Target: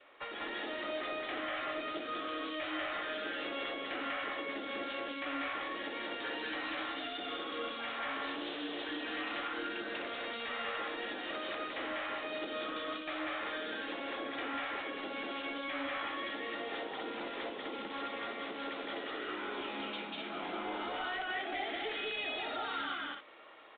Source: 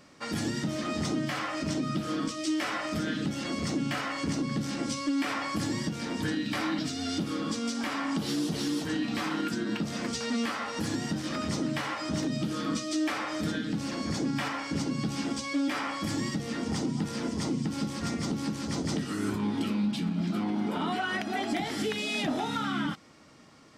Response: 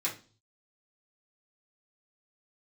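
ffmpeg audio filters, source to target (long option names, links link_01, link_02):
-filter_complex "[0:a]highpass=frequency=430:width=0.5412,highpass=frequency=430:width=1.3066,adynamicequalizer=threshold=0.00224:dfrequency=960:dqfactor=3.4:tfrequency=960:tqfactor=3.4:attack=5:release=100:ratio=0.375:range=4:mode=cutabove:tftype=bell,acompressor=threshold=-38dB:ratio=4,aresample=11025,asoftclip=type=hard:threshold=-37dB,aresample=44100,aecho=1:1:192.4|253.6:1|0.631,asplit=2[link_01][link_02];[1:a]atrim=start_sample=2205[link_03];[link_02][link_03]afir=irnorm=-1:irlink=0,volume=-21.5dB[link_04];[link_01][link_04]amix=inputs=2:normalize=0" -ar 8000 -c:a adpcm_g726 -b:a 40k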